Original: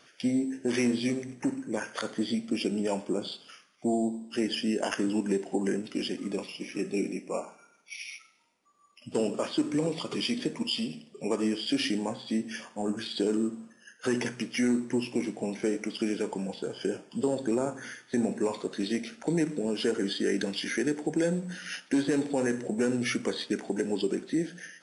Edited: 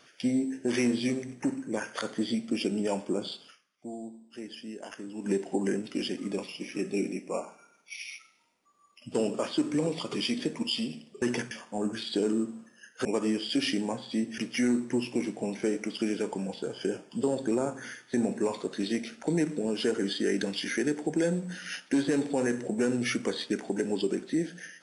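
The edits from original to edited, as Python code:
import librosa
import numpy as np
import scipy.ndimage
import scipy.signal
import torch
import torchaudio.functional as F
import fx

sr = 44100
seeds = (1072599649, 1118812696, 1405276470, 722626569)

y = fx.edit(x, sr, fx.fade_down_up(start_s=3.46, length_s=1.82, db=-12.5, fade_s=0.14, curve='qua'),
    fx.swap(start_s=11.22, length_s=1.33, other_s=14.09, other_length_s=0.29), tone=tone)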